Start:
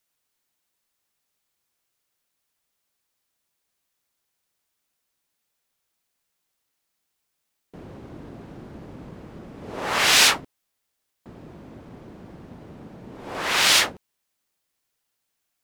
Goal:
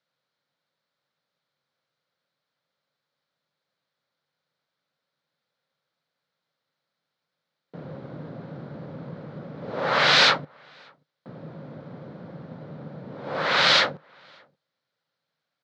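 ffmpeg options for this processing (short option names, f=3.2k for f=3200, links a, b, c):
-filter_complex "[0:a]highpass=f=110:w=0.5412,highpass=f=110:w=1.3066,equalizer=f=150:t=q:w=4:g=10,equalizer=f=360:t=q:w=4:g=-4,equalizer=f=540:t=q:w=4:g=9,equalizer=f=1.4k:t=q:w=4:g=5,equalizer=f=2.7k:t=q:w=4:g=-6,equalizer=f=4.1k:t=q:w=4:g=4,lowpass=f=4.4k:w=0.5412,lowpass=f=4.4k:w=1.3066,asplit=2[a][b];[b]adelay=583.1,volume=-30dB,highshelf=f=4k:g=-13.1[c];[a][c]amix=inputs=2:normalize=0"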